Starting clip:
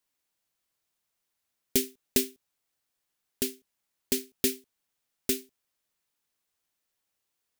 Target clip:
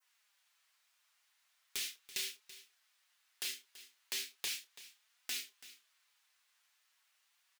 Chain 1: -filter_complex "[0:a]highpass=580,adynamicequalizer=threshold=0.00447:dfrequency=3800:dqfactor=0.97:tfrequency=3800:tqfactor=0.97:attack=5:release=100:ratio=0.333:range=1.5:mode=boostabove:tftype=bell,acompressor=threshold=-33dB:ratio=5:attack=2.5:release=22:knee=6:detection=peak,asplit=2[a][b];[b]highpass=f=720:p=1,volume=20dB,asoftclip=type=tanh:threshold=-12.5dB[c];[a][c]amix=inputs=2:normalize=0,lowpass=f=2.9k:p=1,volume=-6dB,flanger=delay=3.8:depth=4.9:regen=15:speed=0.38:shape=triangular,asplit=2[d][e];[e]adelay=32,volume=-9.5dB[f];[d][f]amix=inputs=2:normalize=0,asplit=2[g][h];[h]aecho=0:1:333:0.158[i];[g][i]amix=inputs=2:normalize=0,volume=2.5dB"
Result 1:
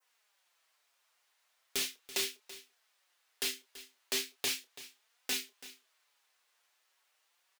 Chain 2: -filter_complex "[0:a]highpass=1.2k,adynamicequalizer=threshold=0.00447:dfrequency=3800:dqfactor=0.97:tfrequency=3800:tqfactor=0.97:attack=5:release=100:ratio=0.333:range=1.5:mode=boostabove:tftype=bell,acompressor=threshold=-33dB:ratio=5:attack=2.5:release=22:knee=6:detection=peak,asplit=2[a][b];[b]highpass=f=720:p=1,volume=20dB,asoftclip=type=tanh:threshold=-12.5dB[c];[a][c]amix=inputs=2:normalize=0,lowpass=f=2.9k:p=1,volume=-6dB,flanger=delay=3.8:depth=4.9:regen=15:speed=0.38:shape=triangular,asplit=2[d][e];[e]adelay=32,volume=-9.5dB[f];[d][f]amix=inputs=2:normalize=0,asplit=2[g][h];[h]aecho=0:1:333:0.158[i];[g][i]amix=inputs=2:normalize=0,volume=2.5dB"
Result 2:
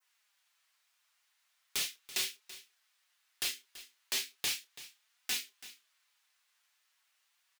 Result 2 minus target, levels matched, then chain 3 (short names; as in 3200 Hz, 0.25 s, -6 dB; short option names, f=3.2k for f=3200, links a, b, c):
compressor: peak gain reduction -7.5 dB
-filter_complex "[0:a]highpass=1.2k,adynamicequalizer=threshold=0.00447:dfrequency=3800:dqfactor=0.97:tfrequency=3800:tqfactor=0.97:attack=5:release=100:ratio=0.333:range=1.5:mode=boostabove:tftype=bell,acompressor=threshold=-42.5dB:ratio=5:attack=2.5:release=22:knee=6:detection=peak,asplit=2[a][b];[b]highpass=f=720:p=1,volume=20dB,asoftclip=type=tanh:threshold=-12.5dB[c];[a][c]amix=inputs=2:normalize=0,lowpass=f=2.9k:p=1,volume=-6dB,flanger=delay=3.8:depth=4.9:regen=15:speed=0.38:shape=triangular,asplit=2[d][e];[e]adelay=32,volume=-9.5dB[f];[d][f]amix=inputs=2:normalize=0,asplit=2[g][h];[h]aecho=0:1:333:0.158[i];[g][i]amix=inputs=2:normalize=0,volume=2.5dB"